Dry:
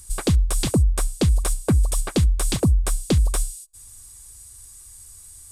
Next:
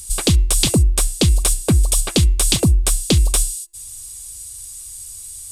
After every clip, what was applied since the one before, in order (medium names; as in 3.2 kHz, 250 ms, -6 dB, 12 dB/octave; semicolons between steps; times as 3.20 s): resonant high shelf 2.2 kHz +6.5 dB, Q 1.5; de-hum 342.1 Hz, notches 8; trim +3.5 dB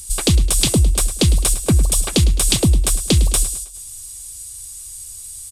feedback delay 106 ms, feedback 47%, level -14 dB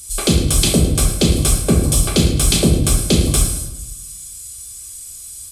comb of notches 940 Hz; simulated room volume 230 m³, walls mixed, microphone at 1.2 m